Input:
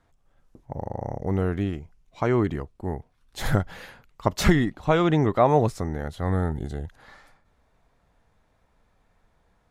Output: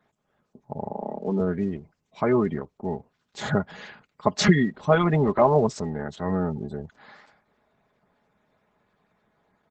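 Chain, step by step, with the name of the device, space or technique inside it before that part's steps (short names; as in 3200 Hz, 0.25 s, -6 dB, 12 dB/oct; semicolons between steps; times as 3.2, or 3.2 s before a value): 0.91–1.4 steep high-pass 170 Hz 48 dB/oct; comb 4.8 ms, depth 62%; 3.84–4.5 dynamic EQ 4900 Hz, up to +5 dB, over -39 dBFS, Q 0.94; noise-suppressed video call (HPF 100 Hz 24 dB/oct; spectral gate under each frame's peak -25 dB strong; Opus 12 kbps 48000 Hz)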